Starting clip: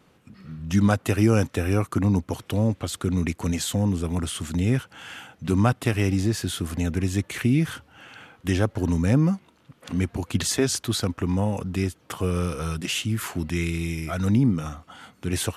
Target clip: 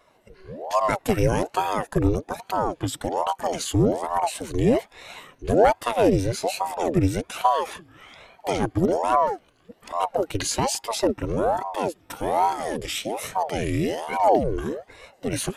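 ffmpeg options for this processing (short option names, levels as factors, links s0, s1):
-af "afftfilt=real='re*pow(10,12/40*sin(2*PI*(1.7*log(max(b,1)*sr/1024/100)/log(2)-(2.2)*(pts-256)/sr)))':imag='im*pow(10,12/40*sin(2*PI*(1.7*log(max(b,1)*sr/1024/100)/log(2)-(2.2)*(pts-256)/sr)))':win_size=1024:overlap=0.75,asubboost=boost=3.5:cutoff=100,aeval=exprs='val(0)*sin(2*PI*530*n/s+530*0.65/1.2*sin(2*PI*1.2*n/s))':c=same"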